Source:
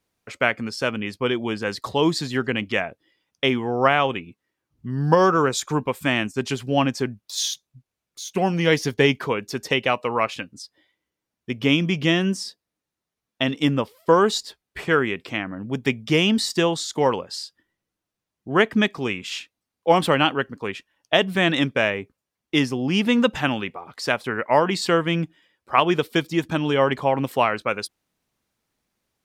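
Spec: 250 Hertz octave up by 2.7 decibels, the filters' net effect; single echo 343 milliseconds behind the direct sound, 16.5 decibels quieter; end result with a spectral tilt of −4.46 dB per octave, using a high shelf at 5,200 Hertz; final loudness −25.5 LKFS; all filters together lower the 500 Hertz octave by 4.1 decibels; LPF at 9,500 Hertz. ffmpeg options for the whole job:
ffmpeg -i in.wav -af "lowpass=9500,equalizer=frequency=250:width_type=o:gain=5.5,equalizer=frequency=500:width_type=o:gain=-7,highshelf=frequency=5200:gain=6.5,aecho=1:1:343:0.15,volume=-3.5dB" out.wav

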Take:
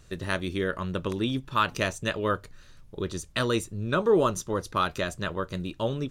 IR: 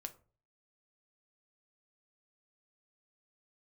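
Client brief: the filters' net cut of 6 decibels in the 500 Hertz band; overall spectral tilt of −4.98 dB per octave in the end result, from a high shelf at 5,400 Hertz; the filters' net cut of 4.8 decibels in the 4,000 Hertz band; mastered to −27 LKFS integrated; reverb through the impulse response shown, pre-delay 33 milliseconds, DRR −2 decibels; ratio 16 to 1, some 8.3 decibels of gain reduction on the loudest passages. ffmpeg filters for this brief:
-filter_complex "[0:a]equalizer=frequency=500:width_type=o:gain=-7.5,equalizer=frequency=4000:width_type=o:gain=-8.5,highshelf=frequency=5400:gain=7,acompressor=threshold=-29dB:ratio=16,asplit=2[link_01][link_02];[1:a]atrim=start_sample=2205,adelay=33[link_03];[link_02][link_03]afir=irnorm=-1:irlink=0,volume=5.5dB[link_04];[link_01][link_04]amix=inputs=2:normalize=0,volume=4dB"

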